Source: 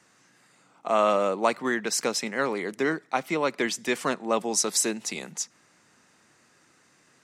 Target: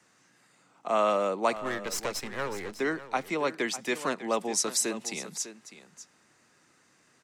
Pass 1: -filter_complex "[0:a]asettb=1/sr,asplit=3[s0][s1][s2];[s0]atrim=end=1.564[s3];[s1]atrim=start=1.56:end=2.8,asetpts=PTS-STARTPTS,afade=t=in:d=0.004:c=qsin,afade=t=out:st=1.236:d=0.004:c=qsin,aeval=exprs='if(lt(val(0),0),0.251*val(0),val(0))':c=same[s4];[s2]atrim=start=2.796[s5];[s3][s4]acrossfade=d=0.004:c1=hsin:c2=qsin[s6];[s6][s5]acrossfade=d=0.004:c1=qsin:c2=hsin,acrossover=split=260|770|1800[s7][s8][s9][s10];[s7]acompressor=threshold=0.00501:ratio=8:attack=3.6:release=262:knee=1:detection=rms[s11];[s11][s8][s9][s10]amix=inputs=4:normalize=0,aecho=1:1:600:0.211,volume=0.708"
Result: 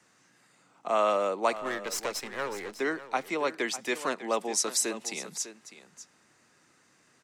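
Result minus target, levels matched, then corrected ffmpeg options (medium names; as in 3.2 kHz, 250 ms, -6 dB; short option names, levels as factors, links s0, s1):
compression: peak gain reduction +9.5 dB
-filter_complex "[0:a]asettb=1/sr,asplit=3[s0][s1][s2];[s0]atrim=end=1.564[s3];[s1]atrim=start=1.56:end=2.8,asetpts=PTS-STARTPTS,afade=t=in:d=0.004:c=qsin,afade=t=out:st=1.236:d=0.004:c=qsin,aeval=exprs='if(lt(val(0),0),0.251*val(0),val(0))':c=same[s4];[s2]atrim=start=2.796[s5];[s3][s4]acrossfade=d=0.004:c1=hsin:c2=qsin[s6];[s6][s5]acrossfade=d=0.004:c1=qsin:c2=hsin,acrossover=split=260|770|1800[s7][s8][s9][s10];[s7]acompressor=threshold=0.0178:ratio=8:attack=3.6:release=262:knee=1:detection=rms[s11];[s11][s8][s9][s10]amix=inputs=4:normalize=0,aecho=1:1:600:0.211,volume=0.708"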